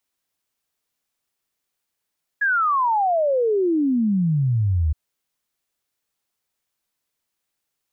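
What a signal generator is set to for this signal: log sweep 1.7 kHz -> 73 Hz 2.52 s -16.5 dBFS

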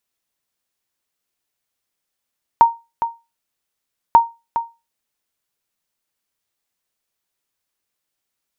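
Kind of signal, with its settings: sonar ping 927 Hz, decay 0.25 s, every 1.54 s, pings 2, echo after 0.41 s, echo -10.5 dB -1.5 dBFS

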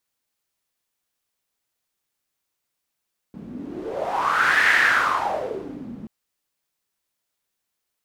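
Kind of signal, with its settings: wind-like swept noise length 2.73 s, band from 210 Hz, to 1.8 kHz, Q 5.9, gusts 1, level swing 19 dB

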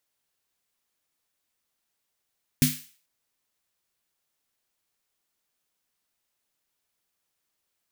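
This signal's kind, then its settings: snare drum length 0.44 s, tones 150 Hz, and 250 Hz, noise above 1.8 kHz, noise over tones -5 dB, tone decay 0.25 s, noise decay 0.45 s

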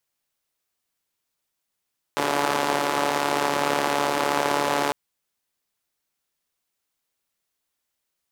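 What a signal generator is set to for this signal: four-cylinder engine model, steady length 2.75 s, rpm 4300, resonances 370/550/810 Hz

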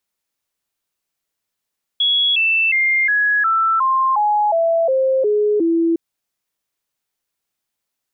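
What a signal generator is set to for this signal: stepped sine 3.35 kHz down, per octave 3, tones 11, 0.36 s, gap 0.00 s -13 dBFS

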